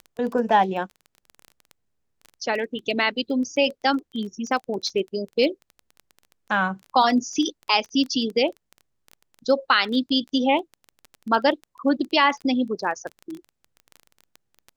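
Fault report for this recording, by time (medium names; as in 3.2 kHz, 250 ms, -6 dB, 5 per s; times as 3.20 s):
crackle 15 per s -29 dBFS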